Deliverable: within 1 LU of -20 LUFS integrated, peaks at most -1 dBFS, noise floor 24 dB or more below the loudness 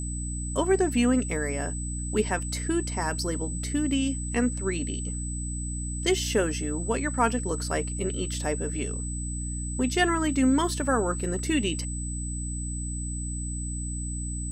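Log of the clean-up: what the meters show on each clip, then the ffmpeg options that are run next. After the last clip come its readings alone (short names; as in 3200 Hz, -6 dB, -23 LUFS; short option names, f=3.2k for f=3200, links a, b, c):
hum 60 Hz; harmonics up to 300 Hz; hum level -30 dBFS; steady tone 8000 Hz; tone level -36 dBFS; loudness -28.0 LUFS; peak -10.0 dBFS; loudness target -20.0 LUFS
-> -af "bandreject=f=60:t=h:w=4,bandreject=f=120:t=h:w=4,bandreject=f=180:t=h:w=4,bandreject=f=240:t=h:w=4,bandreject=f=300:t=h:w=4"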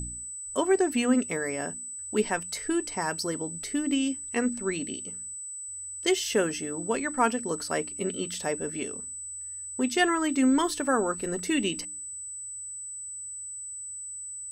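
hum none; steady tone 8000 Hz; tone level -36 dBFS
-> -af "bandreject=f=8k:w=30"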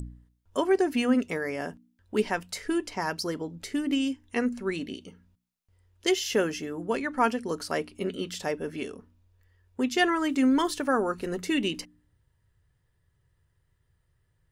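steady tone none; loudness -28.5 LUFS; peak -11.0 dBFS; loudness target -20.0 LUFS
-> -af "volume=8.5dB"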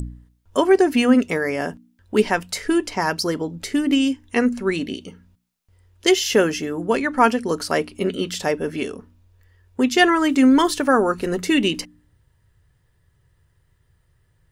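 loudness -20.0 LUFS; peak -2.5 dBFS; noise floor -65 dBFS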